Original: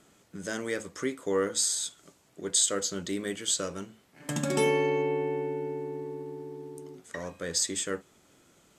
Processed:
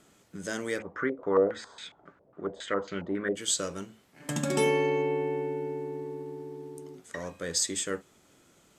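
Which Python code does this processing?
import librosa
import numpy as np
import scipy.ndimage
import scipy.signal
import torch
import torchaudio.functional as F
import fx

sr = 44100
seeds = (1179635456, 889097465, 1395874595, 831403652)

y = fx.filter_held_lowpass(x, sr, hz=7.3, low_hz=550.0, high_hz=2300.0, at=(0.78, 3.35), fade=0.02)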